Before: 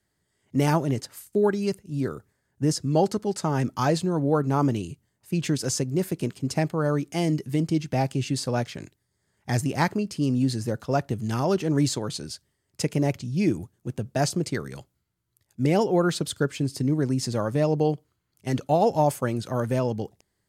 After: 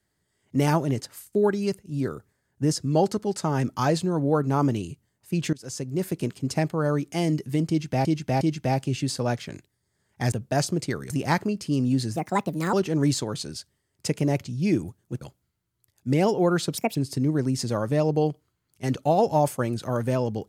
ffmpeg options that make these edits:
-filter_complex "[0:a]asplit=11[a][b][c][d][e][f][g][h][i][j][k];[a]atrim=end=5.53,asetpts=PTS-STARTPTS,afade=t=out:st=5.526:d=0.004:c=hsin:silence=0.0794328[l];[b]atrim=start=5.53:end=8.052,asetpts=PTS-STARTPTS,afade=t=in:d=0.58:silence=0.0794328[m];[c]atrim=start=7.688:end=8.052[n];[d]atrim=start=7.688:end=9.602[o];[e]atrim=start=13.958:end=14.742[p];[f]atrim=start=9.598:end=10.664[q];[g]atrim=start=10.66:end=11.48,asetpts=PTS-STARTPTS,asetrate=63063,aresample=44100,atrim=end_sample=25288,asetpts=PTS-STARTPTS[r];[h]atrim=start=11.476:end=13.962[s];[i]atrim=start=14.738:end=16.304[t];[j]atrim=start=16.3:end=16.59,asetpts=PTS-STARTPTS,asetrate=70560,aresample=44100,atrim=end_sample=7993,asetpts=PTS-STARTPTS[u];[k]atrim=start=16.586[v];[l][m]concat=n=2:v=0:a=1[w];[w][n]acrossfade=d=0.004:c1=hsin:c2=hsin[x];[x][o]acrossfade=d=0.004:c1=hsin:c2=hsin[y];[y][p]acrossfade=d=0.004:c1=hsin:c2=hsin[z];[z][q]acrossfade=d=0.004:c1=hsin:c2=hsin[aa];[aa][r]acrossfade=d=0.004:c1=hsin:c2=hsin[ab];[ab][s]acrossfade=d=0.004:c1=hsin:c2=hsin[ac];[ac][t]acrossfade=d=0.004:c1=hsin:c2=hsin[ad];[ad][u]acrossfade=d=0.004:c1=hsin:c2=hsin[ae];[ae][v]acrossfade=d=0.004:c1=hsin:c2=hsin"

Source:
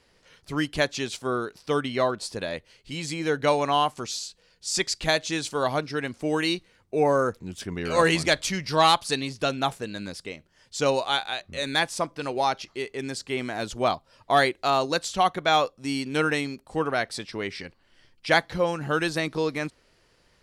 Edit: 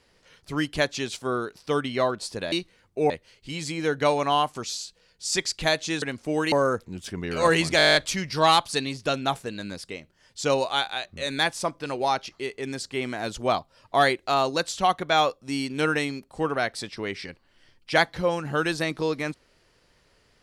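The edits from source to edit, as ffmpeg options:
-filter_complex "[0:a]asplit=14[a][b][c][d][e][f][g][h][i][j][k][l][m][n];[a]atrim=end=2.522[o];[b]atrim=start=6.478:end=7.062[p];[c]atrim=start=2.518:end=5.442[q];[d]atrim=start=5.978:end=6.482[r];[e]atrim=start=7.058:end=8.332[s];[f]atrim=start=8.308:end=8.332[t];[g]atrim=start=8.308:end=8.332[u];[h]atrim=start=8.308:end=8.332[v];[i]atrim=start=8.308:end=8.332[w];[j]atrim=start=8.308:end=8.332[x];[k]atrim=start=8.308:end=8.332[y];[l]atrim=start=8.308:end=8.332[z];[m]atrim=start=8.308:end=8.332[aa];[n]atrim=start=8.308[ab];[o][p]acrossfade=d=0.004:c1=hsin:c2=hsin[ac];[ac][q]acrossfade=d=0.004:c1=hsin:c2=hsin[ad];[ad][r]acrossfade=d=0.004:c1=hsin:c2=hsin[ae];[ae][s]acrossfade=d=0.004:c1=hsin:c2=hsin[af];[af][t]acrossfade=d=0.004:c1=hsin:c2=hsin[ag];[ag][u]acrossfade=d=0.004:c1=hsin:c2=hsin[ah];[ah][v]acrossfade=d=0.004:c1=hsin:c2=hsin[ai];[ai][w]acrossfade=d=0.004:c1=hsin:c2=hsin[aj];[aj][x]acrossfade=d=0.004:c1=hsin:c2=hsin[ak];[ak][y]acrossfade=d=0.004:c1=hsin:c2=hsin[al];[al][z]acrossfade=d=0.004:c1=hsin:c2=hsin[am];[am][aa]acrossfade=d=0.004:c1=hsin:c2=hsin[an];[an][ab]acrossfade=d=0.004:c1=hsin:c2=hsin"

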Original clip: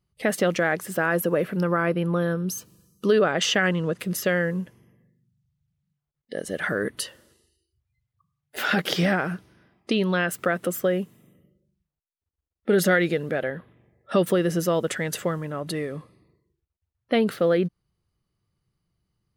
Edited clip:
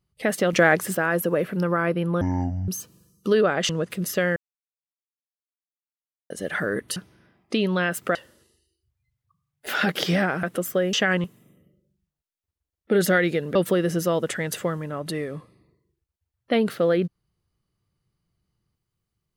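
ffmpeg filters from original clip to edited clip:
-filter_complex "[0:a]asplit=14[a][b][c][d][e][f][g][h][i][j][k][l][m][n];[a]atrim=end=0.532[o];[b]atrim=start=0.528:end=0.952,asetpts=PTS-STARTPTS,volume=6dB[p];[c]atrim=start=0.948:end=2.214[q];[d]atrim=start=2.21:end=2.46,asetpts=PTS-STARTPTS,asetrate=23373,aresample=44100[r];[e]atrim=start=2.456:end=3.472[s];[f]atrim=start=3.778:end=4.45,asetpts=PTS-STARTPTS,afade=t=out:st=0.668:d=0.004:c=hsin[t];[g]atrim=start=4.45:end=6.39,asetpts=PTS-STARTPTS,volume=0[u];[h]atrim=start=6.39:end=7.052,asetpts=PTS-STARTPTS,afade=t=in:d=0.004:c=hsin[v];[i]atrim=start=9.328:end=10.522[w];[j]atrim=start=7.048:end=9.332[x];[k]atrim=start=10.518:end=11.022[y];[l]atrim=start=3.468:end=3.782[z];[m]atrim=start=11.018:end=13.332[aa];[n]atrim=start=14.158[ab];[o][p]acrossfade=d=0.004:c1=hsin:c2=hsin[ac];[ac][q]acrossfade=d=0.004:c1=hsin:c2=hsin[ad];[ad][r]acrossfade=d=0.004:c1=hsin:c2=hsin[ae];[ae][s]acrossfade=d=0.004:c1=hsin:c2=hsin[af];[t][u][v]concat=n=3:v=0:a=1[ag];[af][ag]acrossfade=d=0.004:c1=hsin:c2=hsin[ah];[ah][w]acrossfade=d=0.004:c1=hsin:c2=hsin[ai];[ai][x]acrossfade=d=0.004:c1=hsin:c2=hsin[aj];[aj][y]acrossfade=d=0.004:c1=hsin:c2=hsin[ak];[ak][z]acrossfade=d=0.004:c1=hsin:c2=hsin[al];[al][aa]acrossfade=d=0.004:c1=hsin:c2=hsin[am];[am][ab]acrossfade=d=0.004:c1=hsin:c2=hsin"

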